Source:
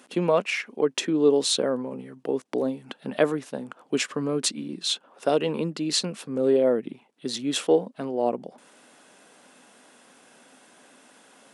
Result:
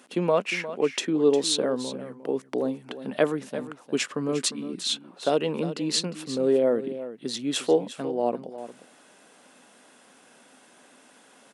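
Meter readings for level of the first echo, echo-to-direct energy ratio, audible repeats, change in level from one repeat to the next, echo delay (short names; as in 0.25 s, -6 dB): -13.0 dB, -13.0 dB, 1, no steady repeat, 0.355 s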